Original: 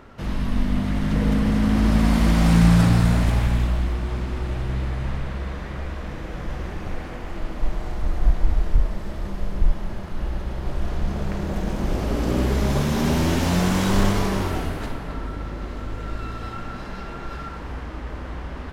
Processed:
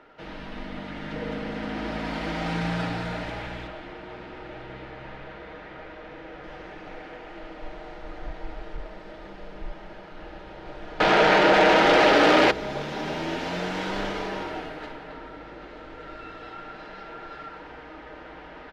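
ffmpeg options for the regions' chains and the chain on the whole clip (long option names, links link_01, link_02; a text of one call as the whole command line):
ffmpeg -i in.wav -filter_complex "[0:a]asettb=1/sr,asplit=3[link_01][link_02][link_03];[link_01]atrim=end=3.674[link_04];[link_02]atrim=start=3.67:end=6.44,asetpts=PTS-STARTPTS,afade=type=in:duration=0.004:curve=qsin,afade=type=out:start_time=2.766:duration=0.004:curve=qsin,highshelf=frequency=5300:gain=-7,bandreject=frequency=60:width_type=h:width=6,bandreject=frequency=120:width_type=h:width=6,bandreject=frequency=180:width_type=h:width=6[link_05];[link_03]atrim=start=6.436[link_06];[link_04][link_05]acrossfade=duration=0.004:curve1=hsin:curve2=qsin[link_07];[link_07][link_06]acrossfade=duration=0.004:curve1=qsin:curve2=hsin,asettb=1/sr,asplit=3[link_08][link_09][link_10];[link_08]atrim=end=11.004[link_11];[link_09]atrim=start=11:end=12.51,asetpts=PTS-STARTPTS,afade=type=in:duration=0.004:curve=qsin,afade=type=out:start_time=1.506:duration=0.004:curve=qsin,asplit=2[link_12][link_13];[link_13]highpass=frequency=720:poles=1,volume=35dB,asoftclip=type=tanh:threshold=-10.5dB[link_14];[link_12][link_14]amix=inputs=2:normalize=0,lowpass=frequency=3700:poles=1,volume=-6dB,acontrast=50[link_15];[link_10]atrim=start=12.506[link_16];[link_11][link_15]acrossfade=duration=0.004:curve1=hsin:curve2=qsin[link_17];[link_17][link_16]acrossfade=duration=0.004:curve1=qsin:curve2=hsin,acrossover=split=300 4700:gain=0.141 1 0.0708[link_18][link_19][link_20];[link_18][link_19][link_20]amix=inputs=3:normalize=0,bandreject=frequency=1100:width=8.1,aecho=1:1:6.4:0.45,volume=-3.5dB" out.wav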